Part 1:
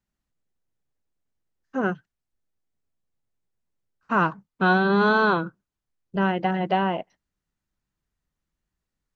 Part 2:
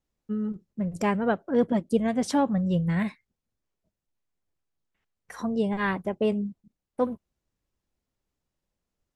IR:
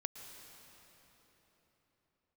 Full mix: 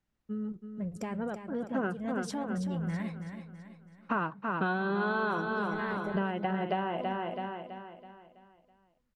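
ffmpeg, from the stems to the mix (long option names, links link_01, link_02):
-filter_complex "[0:a]lowpass=3700,volume=1dB,asplit=2[link_01][link_02];[link_02]volume=-9dB[link_03];[1:a]alimiter=limit=-21.5dB:level=0:latency=1:release=41,volume=-6.5dB,asplit=2[link_04][link_05];[link_05]volume=-8.5dB[link_06];[link_03][link_06]amix=inputs=2:normalize=0,aecho=0:1:328|656|984|1312|1640|1968:1|0.43|0.185|0.0795|0.0342|0.0147[link_07];[link_01][link_04][link_07]amix=inputs=3:normalize=0,acompressor=threshold=-28dB:ratio=6"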